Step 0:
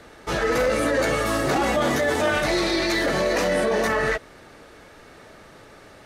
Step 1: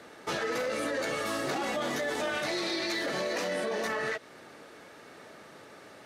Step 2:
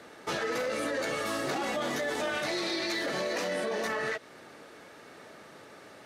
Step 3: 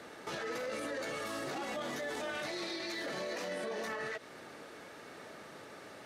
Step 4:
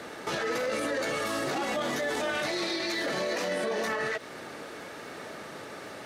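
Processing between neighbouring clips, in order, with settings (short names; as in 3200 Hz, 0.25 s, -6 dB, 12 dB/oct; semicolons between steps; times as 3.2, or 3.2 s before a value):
HPF 160 Hz 12 dB/oct; dynamic EQ 4000 Hz, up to +4 dB, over -37 dBFS, Q 0.73; compressor 4:1, threshold -27 dBFS, peak gain reduction 8.5 dB; gain -3 dB
nothing audible
limiter -31 dBFS, peak gain reduction 10 dB
crackle 37/s -54 dBFS; gain +8.5 dB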